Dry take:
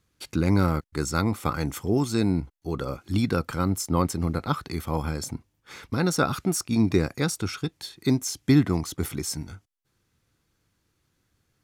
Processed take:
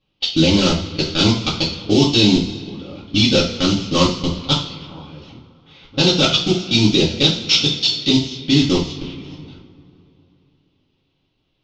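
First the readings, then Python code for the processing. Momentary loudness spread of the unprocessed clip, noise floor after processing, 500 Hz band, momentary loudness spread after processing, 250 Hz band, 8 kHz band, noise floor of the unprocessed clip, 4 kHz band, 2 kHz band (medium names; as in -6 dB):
10 LU, -68 dBFS, +8.0 dB, 16 LU, +7.5 dB, +4.0 dB, -74 dBFS, +21.5 dB, +9.5 dB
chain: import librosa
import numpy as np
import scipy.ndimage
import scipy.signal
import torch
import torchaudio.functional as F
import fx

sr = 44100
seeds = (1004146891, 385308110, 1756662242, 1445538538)

y = fx.cvsd(x, sr, bps=32000)
y = fx.high_shelf_res(y, sr, hz=2300.0, db=11.5, q=3.0)
y = fx.level_steps(y, sr, step_db=24)
y = fx.rev_double_slope(y, sr, seeds[0], early_s=0.38, late_s=3.1, knee_db=-20, drr_db=-7.0)
y = fx.env_lowpass(y, sr, base_hz=1500.0, full_db=-18.5)
y = y * 10.0 ** (5.0 / 20.0)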